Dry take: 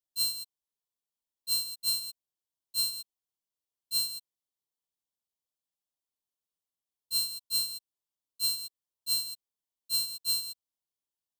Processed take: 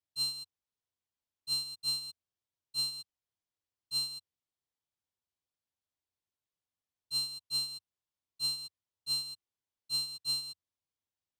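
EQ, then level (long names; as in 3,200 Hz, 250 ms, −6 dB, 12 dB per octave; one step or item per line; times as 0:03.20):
high-frequency loss of the air 65 metres
parametric band 92 Hz +11 dB 0.75 octaves
0.0 dB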